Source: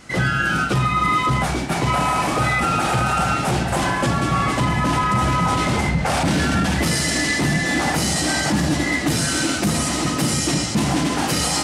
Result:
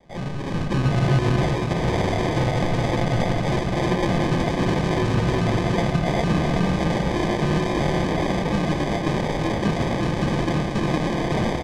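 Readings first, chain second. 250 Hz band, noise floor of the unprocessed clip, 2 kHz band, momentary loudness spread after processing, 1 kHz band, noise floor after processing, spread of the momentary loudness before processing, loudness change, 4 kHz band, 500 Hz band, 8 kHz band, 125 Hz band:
-1.0 dB, -23 dBFS, -8.0 dB, 2 LU, -6.5 dB, -27 dBFS, 2 LU, -3.0 dB, -8.0 dB, +2.5 dB, -16.5 dB, +0.5 dB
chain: minimum comb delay 5.7 ms; AGC; sample-and-hold 32×; air absorption 92 m; echo 0.37 s -6 dB; gain -8.5 dB

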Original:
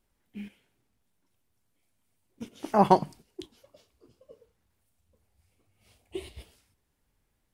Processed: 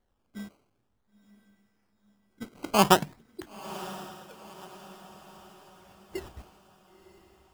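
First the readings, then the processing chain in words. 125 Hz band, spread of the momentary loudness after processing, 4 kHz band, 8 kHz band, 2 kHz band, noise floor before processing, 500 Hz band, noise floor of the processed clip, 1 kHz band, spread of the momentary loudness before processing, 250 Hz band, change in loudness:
0.0 dB, 25 LU, +13.5 dB, n/a, +11.0 dB, -76 dBFS, -0.5 dB, -74 dBFS, -1.0 dB, 22 LU, 0.0 dB, -2.0 dB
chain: decimation with a swept rate 17×, swing 100% 0.49 Hz; diffused feedback echo 0.983 s, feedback 47%, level -16 dB

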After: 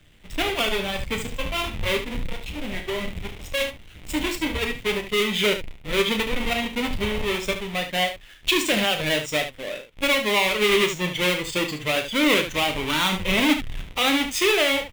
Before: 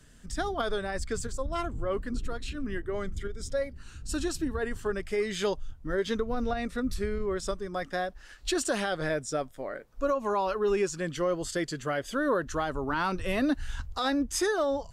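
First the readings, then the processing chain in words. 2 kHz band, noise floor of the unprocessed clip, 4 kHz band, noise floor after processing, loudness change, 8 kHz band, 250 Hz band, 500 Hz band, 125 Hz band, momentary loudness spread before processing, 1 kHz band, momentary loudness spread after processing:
+12.0 dB, -50 dBFS, +16.5 dB, -46 dBFS, +8.0 dB, +6.0 dB, +5.5 dB, +4.0 dB, +5.0 dB, 8 LU, +4.5 dB, 11 LU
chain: half-waves squared off; band shelf 2700 Hz +11 dB 1.1 oct; spectral noise reduction 6 dB; early reflections 10 ms -11 dB, 33 ms -9 dB, 73 ms -9 dB

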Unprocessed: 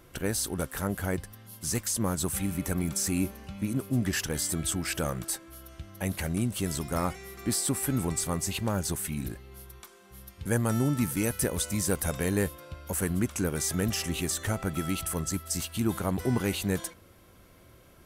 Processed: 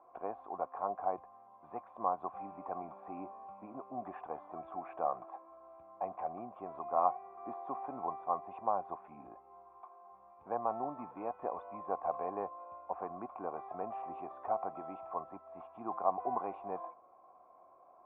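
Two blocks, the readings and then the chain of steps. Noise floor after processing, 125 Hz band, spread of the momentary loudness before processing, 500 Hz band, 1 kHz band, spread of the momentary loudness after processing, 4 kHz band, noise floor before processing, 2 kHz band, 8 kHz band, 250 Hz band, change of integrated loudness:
-61 dBFS, -30.0 dB, 9 LU, -5.5 dB, +4.5 dB, 18 LU, under -40 dB, -56 dBFS, -23.0 dB, under -40 dB, -19.0 dB, -10.0 dB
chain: vocal tract filter a; three-band isolator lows -20 dB, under 250 Hz, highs -13 dB, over 2200 Hz; gain +12.5 dB

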